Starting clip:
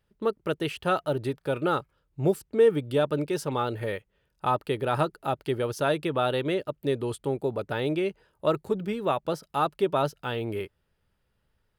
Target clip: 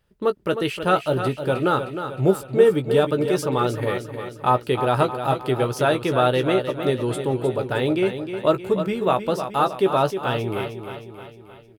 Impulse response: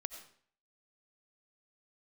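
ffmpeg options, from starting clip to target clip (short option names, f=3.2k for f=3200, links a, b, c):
-filter_complex "[0:a]asplit=2[a][b];[b]adelay=16,volume=-9dB[c];[a][c]amix=inputs=2:normalize=0,aecho=1:1:310|620|930|1240|1550|1860:0.355|0.188|0.0997|0.0528|0.028|0.0148,volume=5dB"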